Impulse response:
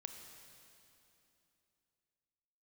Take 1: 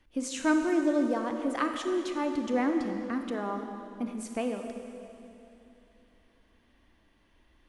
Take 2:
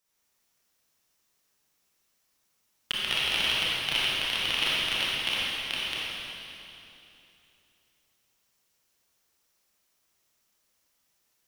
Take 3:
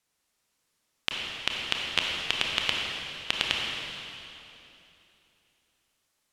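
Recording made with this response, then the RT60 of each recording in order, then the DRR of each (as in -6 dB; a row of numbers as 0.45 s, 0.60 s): 1; 3.0 s, 3.0 s, 3.0 s; 4.5 dB, -7.5 dB, -1.5 dB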